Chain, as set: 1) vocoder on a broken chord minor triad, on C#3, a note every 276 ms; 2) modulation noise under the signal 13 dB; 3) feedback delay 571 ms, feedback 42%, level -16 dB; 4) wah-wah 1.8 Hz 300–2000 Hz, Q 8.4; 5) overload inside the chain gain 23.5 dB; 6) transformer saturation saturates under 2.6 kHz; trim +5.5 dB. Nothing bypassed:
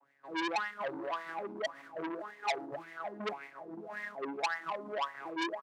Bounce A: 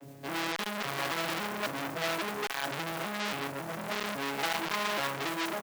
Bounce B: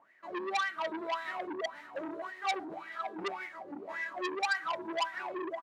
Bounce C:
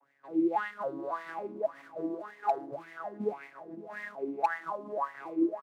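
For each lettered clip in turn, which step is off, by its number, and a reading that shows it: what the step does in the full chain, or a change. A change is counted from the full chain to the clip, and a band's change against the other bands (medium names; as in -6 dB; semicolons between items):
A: 4, 125 Hz band +11.0 dB; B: 1, 125 Hz band -6.5 dB; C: 6, crest factor change -4.0 dB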